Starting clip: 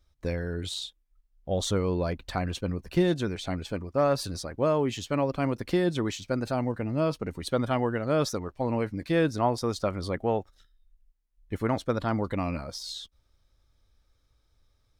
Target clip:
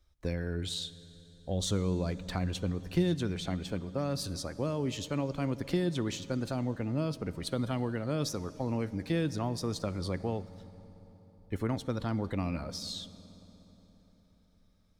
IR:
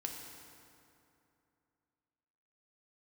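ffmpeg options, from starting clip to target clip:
-filter_complex "[0:a]acrossover=split=300|3000[a][b][c];[b]acompressor=threshold=-34dB:ratio=5[d];[a][d][c]amix=inputs=3:normalize=0,asplit=2[e][f];[1:a]atrim=start_sample=2205,asetrate=26901,aresample=44100[g];[f][g]afir=irnorm=-1:irlink=0,volume=-13.5dB[h];[e][h]amix=inputs=2:normalize=0,volume=-3.5dB"

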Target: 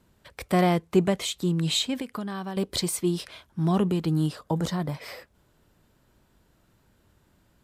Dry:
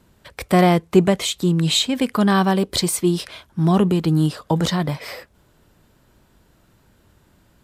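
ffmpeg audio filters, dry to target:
-filter_complex "[0:a]asettb=1/sr,asplit=3[a][b][c];[a]atrim=end=2.004[d];[b]atrim=start=2:end=2.57,asetpts=PTS-STARTPTS,afade=t=in:d=0.004:c=qsin,afade=t=out:st=0.566:d=0.004:c=qsin,acompressor=threshold=-23dB:ratio=12[e];[c]atrim=start=2.566[f];[d][e]acrossfade=d=0.004:c1=hsin:c2=qsin[g];[g][f]acrossfade=d=0.004:c1=qsin:c2=hsin,asettb=1/sr,asplit=3[h][i][j];[h]atrim=end=4.414[k];[i]atrim=start=4.41:end=4.94,asetpts=PTS-STARTPTS,afade=t=in:d=0.004:c=qsin,afade=t=out:st=0.526:d=0.004:c=qsin,equalizer=f=3k:t=o:w=1.8:g=-6[l];[j]atrim=start=4.936[m];[k][l]acrossfade=d=0.004:c1=hsin:c2=qsin[n];[n][m]acrossfade=d=0.004:c1=qsin:c2=hsin,volume=-7dB"

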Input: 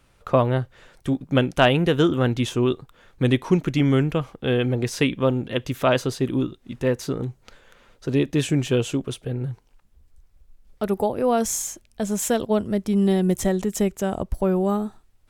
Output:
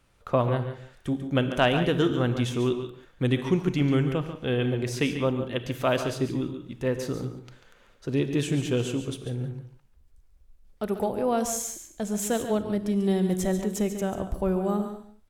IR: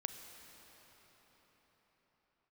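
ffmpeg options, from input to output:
-filter_complex "[0:a]aecho=1:1:142:0.316[a];[1:a]atrim=start_sample=2205,afade=t=out:st=0.25:d=0.01,atrim=end_sample=11466[b];[a][b]afir=irnorm=-1:irlink=0,volume=-3dB"

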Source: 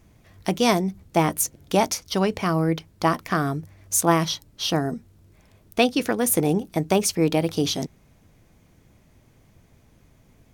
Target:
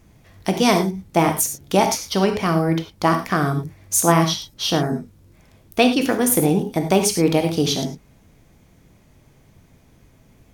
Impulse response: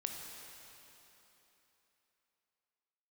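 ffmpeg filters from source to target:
-filter_complex "[1:a]atrim=start_sample=2205,atrim=end_sample=6174,asetrate=52920,aresample=44100[a];[0:a][a]afir=irnorm=-1:irlink=0,volume=6.5dB"

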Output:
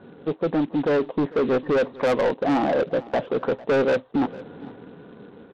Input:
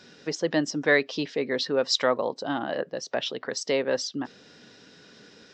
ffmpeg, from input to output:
-filter_complex "[0:a]lowpass=f=1.1k:w=0.5412,lowpass=f=1.1k:w=1.3066,bandreject=f=610:w=12,asplit=2[a][b];[b]alimiter=limit=-21dB:level=0:latency=1:release=366,volume=-0.5dB[c];[a][c]amix=inputs=2:normalize=0,dynaudnorm=f=330:g=7:m=7dB,aresample=8000,acrusher=bits=4:mode=log:mix=0:aa=0.000001,aresample=44100,asoftclip=type=tanh:threshold=-20.5dB,aecho=1:1:450:0.1,volume=3.5dB"

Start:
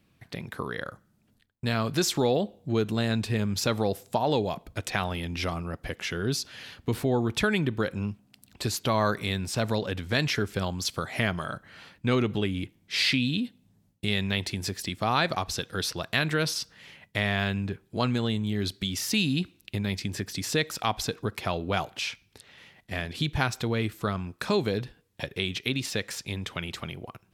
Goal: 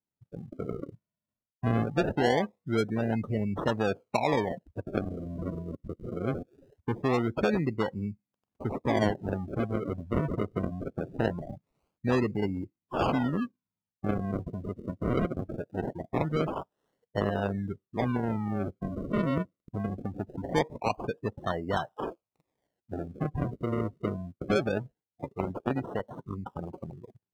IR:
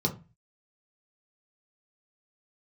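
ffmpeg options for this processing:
-filter_complex "[0:a]asettb=1/sr,asplit=3[a][b][c];[a]atrim=end=0.684[d];[b]atrim=start=0.68:end=1.83,asetpts=PTS-STARTPTS,afade=t=in:d=0.004:c=qsin,afade=t=out:st=1.146:d=0.004:c=qsin,bass=f=250:g=6,treble=f=4k:g=-2[e];[c]atrim=start=1.826[f];[d][e]acrossfade=d=0.004:c1=hsin:c2=qsin[g];[g][f]acrossfade=d=0.004:c1=qsin:c2=hsin,acrusher=samples=36:mix=1:aa=0.000001:lfo=1:lforange=36:lforate=0.22,afftdn=nr=28:nf=-31,lowshelf=f=88:g=-10"

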